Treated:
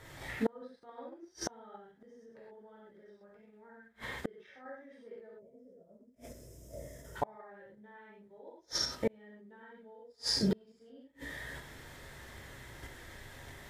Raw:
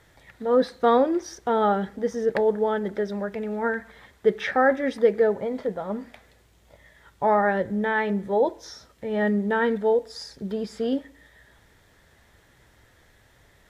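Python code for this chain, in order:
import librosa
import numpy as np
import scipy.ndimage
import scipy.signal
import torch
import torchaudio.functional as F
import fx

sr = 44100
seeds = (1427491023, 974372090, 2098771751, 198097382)

p1 = fx.rev_gated(x, sr, seeds[0], gate_ms=150, shape='flat', drr_db=-7.5)
p2 = fx.level_steps(p1, sr, step_db=12)
p3 = p1 + (p2 * librosa.db_to_amplitude(0.5))
p4 = fx.spec_box(p3, sr, start_s=5.39, length_s=1.77, low_hz=710.0, high_hz=4900.0, gain_db=-18)
p5 = fx.gate_flip(p4, sr, shuts_db=-16.0, range_db=-38)
y = p5 * librosa.db_to_amplitude(-3.0)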